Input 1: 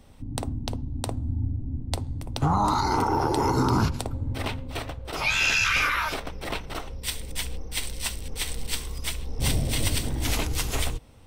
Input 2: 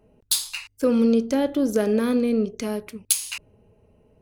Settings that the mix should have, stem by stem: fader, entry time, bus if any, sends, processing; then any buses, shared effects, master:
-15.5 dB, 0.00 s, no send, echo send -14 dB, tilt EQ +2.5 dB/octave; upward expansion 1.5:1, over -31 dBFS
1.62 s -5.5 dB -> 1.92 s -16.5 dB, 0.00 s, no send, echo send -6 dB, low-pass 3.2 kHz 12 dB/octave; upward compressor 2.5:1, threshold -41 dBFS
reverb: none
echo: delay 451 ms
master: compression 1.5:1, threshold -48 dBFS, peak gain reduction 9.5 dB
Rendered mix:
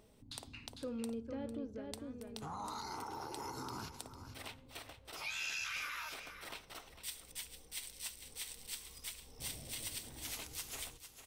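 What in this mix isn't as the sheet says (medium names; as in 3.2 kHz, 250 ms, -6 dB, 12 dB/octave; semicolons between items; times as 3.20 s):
stem 1: missing upward expansion 1.5:1, over -31 dBFS; stem 2 -5.5 dB -> -17.0 dB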